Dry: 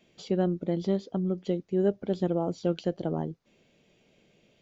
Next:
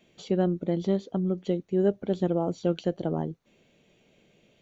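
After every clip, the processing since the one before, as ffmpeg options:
-af "bandreject=f=5000:w=6.6,volume=1.19"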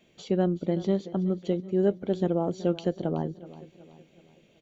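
-af "aecho=1:1:375|750|1125|1500:0.141|0.065|0.0299|0.0137"

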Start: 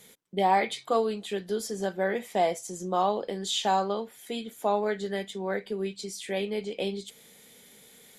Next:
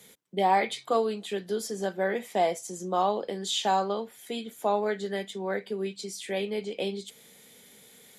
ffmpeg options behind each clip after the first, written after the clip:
-filter_complex "[0:a]highpass=47,acrossover=split=140[s0][s1];[s0]acompressor=threshold=0.00126:ratio=6[s2];[s2][s1]amix=inputs=2:normalize=0"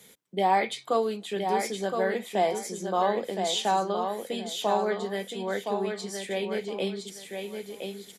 -af "aecho=1:1:1017|2034|3051:0.531|0.122|0.0281"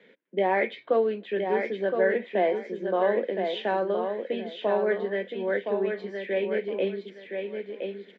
-af "highpass=f=210:w=0.5412,highpass=f=210:w=1.3066,equalizer=f=340:t=q:w=4:g=3,equalizer=f=540:t=q:w=4:g=5,equalizer=f=800:t=q:w=4:g=-9,equalizer=f=1200:t=q:w=4:g=-9,equalizer=f=1700:t=q:w=4:g=5,lowpass=f=2600:w=0.5412,lowpass=f=2600:w=1.3066,volume=1.26"

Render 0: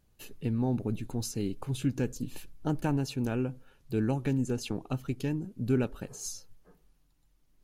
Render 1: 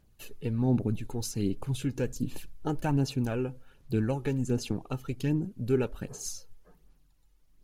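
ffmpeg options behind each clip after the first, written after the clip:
-af "aphaser=in_gain=1:out_gain=1:delay=2.4:decay=0.43:speed=1.3:type=sinusoidal"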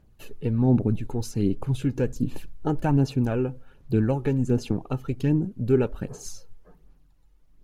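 -af "highshelf=f=2400:g=-10,volume=2"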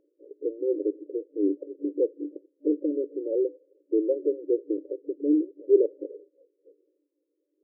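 -af "afftfilt=real='re*between(b*sr/4096,280,590)':imag='im*between(b*sr/4096,280,590)':win_size=4096:overlap=0.75,volume=1.5"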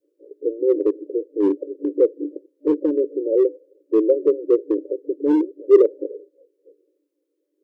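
-filter_complex "[0:a]highpass=250,adynamicequalizer=threshold=0.0224:dfrequency=410:dqfactor=0.79:tfrequency=410:tqfactor=0.79:attack=5:release=100:ratio=0.375:range=2.5:mode=boostabove:tftype=bell,acrossover=split=330[s0][s1];[s0]asoftclip=type=hard:threshold=0.0531[s2];[s2][s1]amix=inputs=2:normalize=0,volume=1.68"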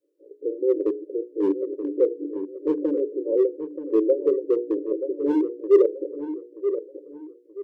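-filter_complex "[0:a]bandreject=f=60:t=h:w=6,bandreject=f=120:t=h:w=6,bandreject=f=180:t=h:w=6,bandreject=f=240:t=h:w=6,bandreject=f=300:t=h:w=6,bandreject=f=360:t=h:w=6,bandreject=f=420:t=h:w=6,bandreject=f=480:t=h:w=6,asplit=2[s0][s1];[s1]adelay=929,lowpass=f=1200:p=1,volume=0.355,asplit=2[s2][s3];[s3]adelay=929,lowpass=f=1200:p=1,volume=0.35,asplit=2[s4][s5];[s5]adelay=929,lowpass=f=1200:p=1,volume=0.35,asplit=2[s6][s7];[s7]adelay=929,lowpass=f=1200:p=1,volume=0.35[s8];[s2][s4][s6][s8]amix=inputs=4:normalize=0[s9];[s0][s9]amix=inputs=2:normalize=0,volume=0.708"

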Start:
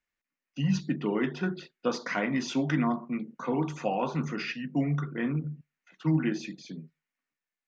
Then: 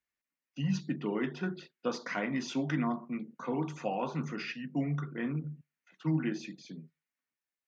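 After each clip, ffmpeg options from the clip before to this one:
-af "highpass=41,volume=0.596"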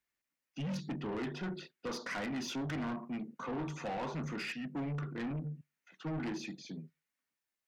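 -af "asoftclip=type=tanh:threshold=0.015,volume=1.26"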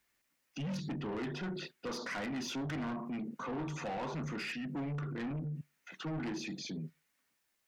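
-af "alimiter=level_in=11.9:limit=0.0631:level=0:latency=1:release=35,volume=0.0841,volume=3.35"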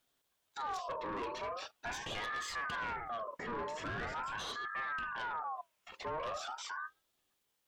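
-af "aeval=exprs='val(0)*sin(2*PI*1100*n/s+1100*0.35/0.42*sin(2*PI*0.42*n/s))':c=same,volume=1.19"

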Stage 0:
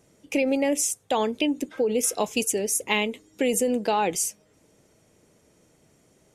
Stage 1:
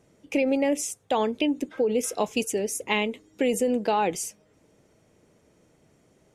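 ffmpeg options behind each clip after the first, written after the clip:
-af "highshelf=f=4700:g=-8.5"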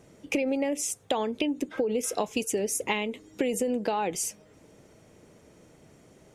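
-af "acompressor=threshold=0.0282:ratio=6,volume=2"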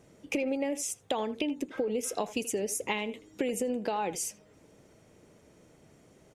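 -filter_complex "[0:a]asplit=2[s0][s1];[s1]adelay=80,highpass=300,lowpass=3400,asoftclip=type=hard:threshold=0.0841,volume=0.2[s2];[s0][s2]amix=inputs=2:normalize=0,volume=0.668"

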